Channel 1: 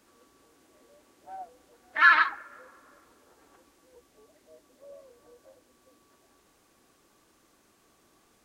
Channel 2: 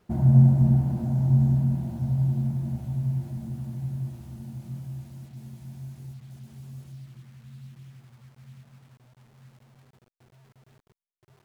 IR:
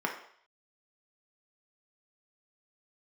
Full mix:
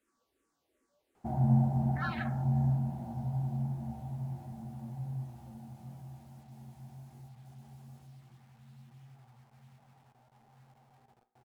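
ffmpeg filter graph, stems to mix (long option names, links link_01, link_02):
-filter_complex "[0:a]asplit=2[link_01][link_02];[link_02]afreqshift=-2.7[link_03];[link_01][link_03]amix=inputs=2:normalize=1,volume=-14.5dB[link_04];[1:a]equalizer=frequency=790:width_type=o:width=0.36:gain=14.5,flanger=delay=7.2:depth=10:regen=73:speed=0.25:shape=triangular,adelay=1150,volume=-5dB,asplit=2[link_05][link_06];[link_06]volume=-15dB[link_07];[2:a]atrim=start_sample=2205[link_08];[link_07][link_08]afir=irnorm=-1:irlink=0[link_09];[link_04][link_05][link_09]amix=inputs=3:normalize=0"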